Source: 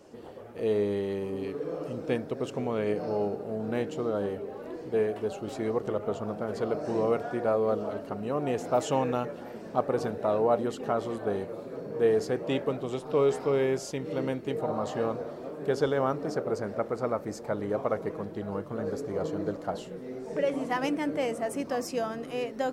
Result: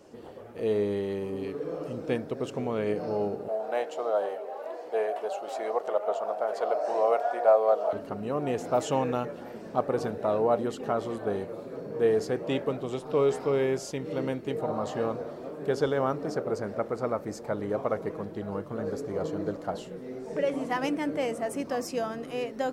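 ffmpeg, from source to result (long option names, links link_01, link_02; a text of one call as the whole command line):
ffmpeg -i in.wav -filter_complex "[0:a]asettb=1/sr,asplit=3[link_01][link_02][link_03];[link_01]atrim=end=3.484[link_04];[link_02]atrim=start=3.48:end=7.93,asetpts=PTS-STARTPTS,afade=type=in:duration=0.004:curve=qsin,afade=type=out:start_time=4.446:duration=0.004:curve=qsin,highpass=frequency=670:width_type=q:width=3.2[link_05];[link_03]atrim=start=7.926[link_06];[link_04][link_05]acrossfade=duration=0.004:curve1=hsin:curve2=qsin[link_07];[link_07][link_06]acrossfade=duration=0.004:curve1=qsin:curve2=hsin" out.wav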